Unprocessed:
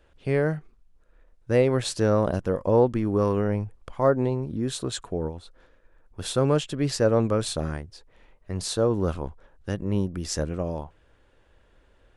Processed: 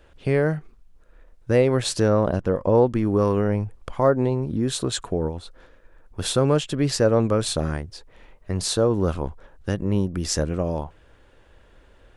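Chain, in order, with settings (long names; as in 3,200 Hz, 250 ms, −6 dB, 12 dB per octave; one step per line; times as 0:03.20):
0:02.08–0:02.75: low-pass filter 3,600 Hz 6 dB per octave
in parallel at +1 dB: downward compressor, threshold −29 dBFS, peak gain reduction 14 dB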